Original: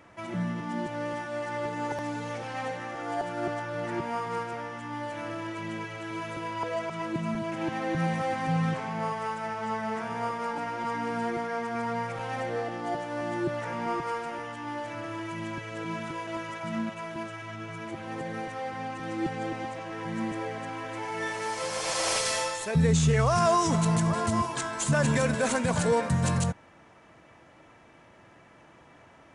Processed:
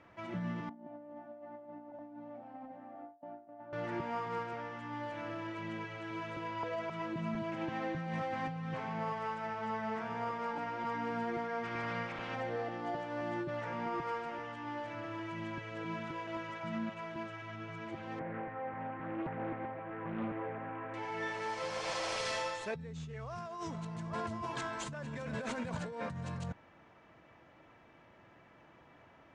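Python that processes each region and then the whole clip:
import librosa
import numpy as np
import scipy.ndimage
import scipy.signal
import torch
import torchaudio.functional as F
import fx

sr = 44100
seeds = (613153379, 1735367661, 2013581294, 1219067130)

y = fx.chain(x, sr, fx.double_bandpass(hz=420.0, octaves=1.3),
    fx.over_compress(threshold_db=-43.0, ratio=-0.5), at=(0.69, 3.73))
y = fx.spec_clip(y, sr, under_db=18, at=(11.63, 12.34), fade=0.02)
y = fx.lowpass(y, sr, hz=3400.0, slope=6, at=(11.63, 12.34), fade=0.02)
y = fx.chain(y, sr, fx.lowpass(hz=2000.0, slope=24),
    fx.doppler_dist(depth_ms=0.53), at=(18.19, 20.94))
y = scipy.signal.sosfilt(scipy.signal.butter(2, 4300.0, 'lowpass', fs=sr, output='sos'), y)
y = fx.over_compress(y, sr, threshold_db=-30.0, ratio=-1.0)
y = y * 10.0 ** (-7.5 / 20.0)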